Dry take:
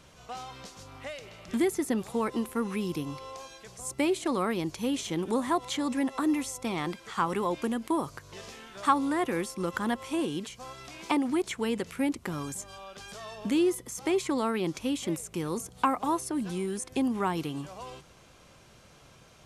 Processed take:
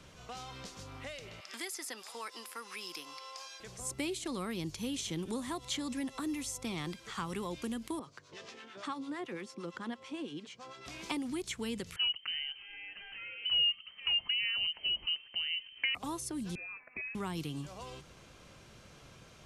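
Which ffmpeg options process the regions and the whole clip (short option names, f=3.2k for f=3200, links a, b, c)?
-filter_complex "[0:a]asettb=1/sr,asplit=3[a][b][c];[a]atrim=end=1.404[d];[b]atrim=start=1.4:end=3.6,asetpts=PTS-STARTPTS,afade=t=in:d=0.004:c=qsin,afade=t=out:st=2.196:d=0.004:c=qsin,highpass=920,equalizer=f=5k:w=7.6:g=12[e];[c]atrim=start=3.596[f];[d][e]acrossfade=d=0.004:c1=hsin:c2=qsin[g];[g][f]acrossfade=d=0.004:c1=qsin:c2=hsin,asettb=1/sr,asplit=3[h][i][j];[h]atrim=end=7.994[k];[i]atrim=start=7.99:end=10.86,asetpts=PTS-STARTPTS,afade=t=in:d=0.004:c=qsin,afade=t=out:st=2.866:d=0.004:c=qsin,highpass=210,lowpass=6.2k,acrossover=split=700[l][m];[l]aeval=exprs='val(0)*(1-0.7/2+0.7/2*cos(2*PI*8.9*n/s))':c=same[n];[m]aeval=exprs='val(0)*(1-0.7/2-0.7/2*cos(2*PI*8.9*n/s))':c=same[o];[n][o]amix=inputs=2:normalize=0,adynamicequalizer=threshold=0.00282:dfrequency=3700:dqfactor=0.7:tfrequency=3700:tqfactor=0.7:attack=5:release=100:ratio=0.375:range=3:mode=cutabove:tftype=highshelf[p];[j]atrim=start=10.856[q];[k][p]acrossfade=d=0.004:c1=hsin:c2=qsin[r];[r][q]acrossfade=d=0.004:c1=qsin:c2=hsin,asettb=1/sr,asplit=3[s][t][u];[s]atrim=end=11.964[v];[t]atrim=start=11.96:end=15.95,asetpts=PTS-STARTPTS,afade=t=in:d=0.004:c=qsin,afade=t=out:st=3.986:d=0.004:c=qsin,lowpass=f=2.7k:t=q:w=0.5098,lowpass=f=2.7k:t=q:w=0.6013,lowpass=f=2.7k:t=q:w=0.9,lowpass=f=2.7k:t=q:w=2.563,afreqshift=-3200,equalizer=f=890:w=0.86:g=-5.5[w];[u]atrim=start=15.946[x];[v][w]acrossfade=d=0.004:c1=hsin:c2=qsin[y];[y][x]acrossfade=d=0.004:c1=qsin:c2=hsin,asettb=1/sr,asplit=3[z][aa][ab];[z]atrim=end=16.554[ac];[aa]atrim=start=16.55:end=17.15,asetpts=PTS-STARTPTS,afade=t=in:d=0.004:c=qsin,afade=t=out:st=0.596:d=0.004:c=qsin,highpass=f=1.1k:p=1,lowpass=f=2.4k:t=q:w=0.5098,lowpass=f=2.4k:t=q:w=0.6013,lowpass=f=2.4k:t=q:w=0.9,lowpass=f=2.4k:t=q:w=2.563,afreqshift=-2800[ad];[ab]atrim=start=17.146[ae];[ac][ad]acrossfade=d=0.004:c1=hsin:c2=qsin[af];[af][ae]acrossfade=d=0.004:c1=qsin:c2=hsin,equalizer=f=800:w=1.2:g=-3.5,acrossover=split=150|3000[ag][ah][ai];[ah]acompressor=threshold=-47dB:ratio=2[aj];[ag][aj][ai]amix=inputs=3:normalize=0,highshelf=f=8.4k:g=-6.5,volume=1dB"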